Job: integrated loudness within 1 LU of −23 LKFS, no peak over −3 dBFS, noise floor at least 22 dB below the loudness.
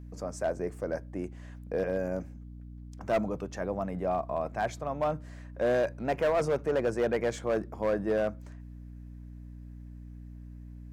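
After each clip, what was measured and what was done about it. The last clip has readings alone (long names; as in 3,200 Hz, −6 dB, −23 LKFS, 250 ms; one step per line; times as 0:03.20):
share of clipped samples 1.4%; peaks flattened at −21.5 dBFS; mains hum 60 Hz; hum harmonics up to 300 Hz; level of the hum −42 dBFS; integrated loudness −31.5 LKFS; sample peak −21.5 dBFS; target loudness −23.0 LKFS
→ clipped peaks rebuilt −21.5 dBFS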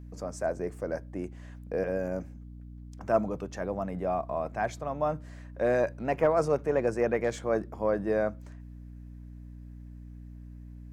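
share of clipped samples 0.0%; mains hum 60 Hz; hum harmonics up to 240 Hz; level of the hum −42 dBFS
→ mains-hum notches 60/120/180/240 Hz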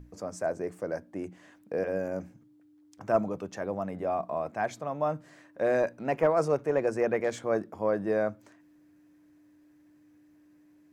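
mains hum none found; integrated loudness −30.5 LKFS; sample peak −12.5 dBFS; target loudness −23.0 LKFS
→ level +7.5 dB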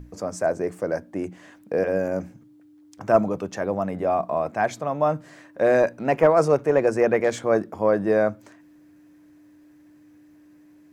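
integrated loudness −23.0 LKFS; sample peak −5.0 dBFS; background noise floor −53 dBFS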